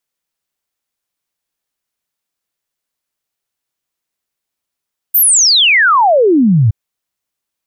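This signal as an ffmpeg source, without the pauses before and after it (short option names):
-f lavfi -i "aevalsrc='0.501*clip(min(t,1.57-t)/0.01,0,1)*sin(2*PI*15000*1.57/log(100/15000)*(exp(log(100/15000)*t/1.57)-1))':d=1.57:s=44100"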